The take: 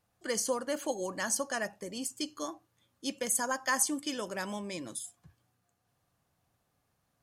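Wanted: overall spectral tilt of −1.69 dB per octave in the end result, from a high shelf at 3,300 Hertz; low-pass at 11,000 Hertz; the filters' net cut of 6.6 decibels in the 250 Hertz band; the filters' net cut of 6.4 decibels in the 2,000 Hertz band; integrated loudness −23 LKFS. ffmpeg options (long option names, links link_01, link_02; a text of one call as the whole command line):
ffmpeg -i in.wav -af "lowpass=11000,equalizer=frequency=250:width_type=o:gain=-8,equalizer=frequency=2000:width_type=o:gain=-6.5,highshelf=frequency=3300:gain=-4.5,volume=15dB" out.wav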